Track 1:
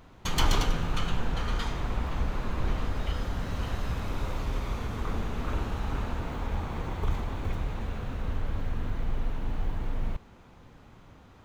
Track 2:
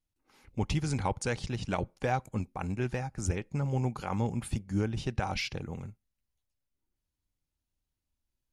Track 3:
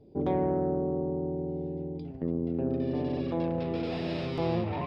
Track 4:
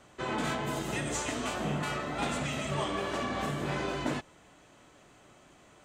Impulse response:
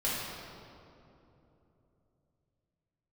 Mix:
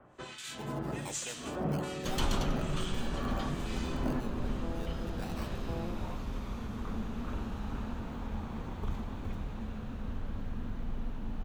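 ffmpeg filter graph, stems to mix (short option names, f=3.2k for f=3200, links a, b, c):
-filter_complex "[0:a]equalizer=f=220:t=o:w=0.47:g=10,adelay=1800,volume=-7.5dB[a];[1:a]highpass=290,acrusher=samples=11:mix=1:aa=0.000001:lfo=1:lforange=6.6:lforate=0.26,volume=-13dB[b];[2:a]adelay=1300,volume=-12dB[c];[3:a]acrossover=split=310|3000[d][e][f];[e]acompressor=threshold=-37dB:ratio=6[g];[d][g][f]amix=inputs=3:normalize=0,acrossover=split=1800[h][i];[h]aeval=exprs='val(0)*(1-1/2+1/2*cos(2*PI*1.2*n/s))':c=same[j];[i]aeval=exprs='val(0)*(1-1/2-1/2*cos(2*PI*1.2*n/s))':c=same[k];[j][k]amix=inputs=2:normalize=0,volume=0dB,asplit=2[l][m];[m]volume=-22.5dB[n];[4:a]atrim=start_sample=2205[o];[n][o]afir=irnorm=-1:irlink=0[p];[a][b][c][l][p]amix=inputs=5:normalize=0,equalizer=f=2.1k:t=o:w=0.24:g=-4"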